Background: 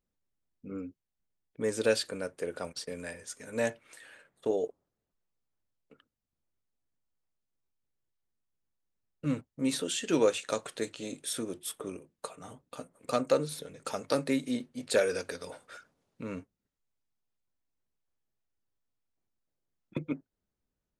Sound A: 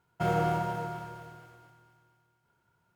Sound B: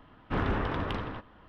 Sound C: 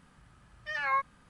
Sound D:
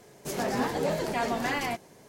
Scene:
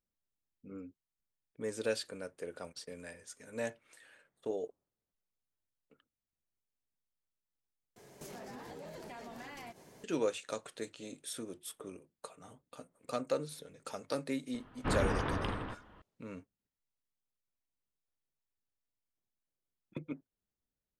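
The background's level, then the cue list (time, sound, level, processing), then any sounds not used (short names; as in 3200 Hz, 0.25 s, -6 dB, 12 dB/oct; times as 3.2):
background -7.5 dB
7.96 replace with D -4 dB + compressor 10:1, threshold -40 dBFS
14.54 add B -3 dB
not used: A, C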